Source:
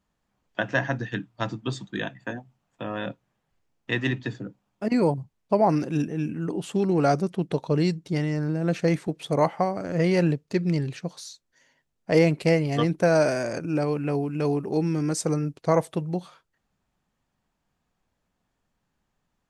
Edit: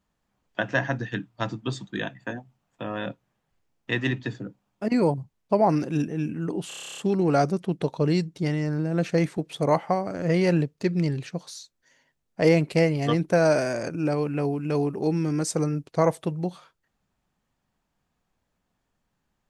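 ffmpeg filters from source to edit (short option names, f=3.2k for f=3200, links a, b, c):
-filter_complex "[0:a]asplit=11[a][b][c][d][e][f][g][h][i][j][k];[a]atrim=end=6.712[l];[b]atrim=start=6.678:end=6.712[m];[c]atrim=start=6.678:end=6.712[n];[d]atrim=start=6.678:end=6.712[o];[e]atrim=start=6.678:end=6.712[p];[f]atrim=start=6.678:end=6.712[q];[g]atrim=start=6.678:end=6.712[r];[h]atrim=start=6.678:end=6.712[s];[i]atrim=start=6.678:end=6.712[t];[j]atrim=start=6.678:end=6.712[u];[k]atrim=start=6.678[v];[l][m]acrossfade=d=0.004:c1=hsin:c2=hsin[w];[w][n]acrossfade=d=0.004:c1=hsin:c2=hsin[x];[x][o]acrossfade=d=0.004:c1=hsin:c2=hsin[y];[y][p]acrossfade=d=0.004:c1=hsin:c2=hsin[z];[z][q]acrossfade=d=0.004:c1=hsin:c2=hsin[aa];[aa][r]acrossfade=d=0.004:c1=hsin:c2=hsin[ab];[ab][s]acrossfade=d=0.004:c1=hsin:c2=hsin[ac];[ac][t]acrossfade=d=0.004:c1=hsin:c2=hsin[ad];[ad][u]acrossfade=d=0.004:c1=hsin:c2=hsin[ae];[ae][v]acrossfade=d=0.004:c1=hsin:c2=hsin"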